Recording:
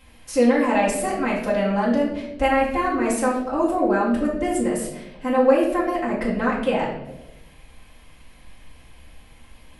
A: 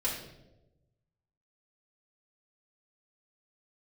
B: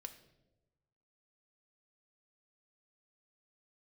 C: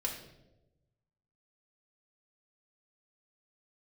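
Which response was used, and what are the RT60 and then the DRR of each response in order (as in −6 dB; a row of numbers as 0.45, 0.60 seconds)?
A; 1.0, 1.1, 1.0 seconds; −7.5, 6.5, −1.5 decibels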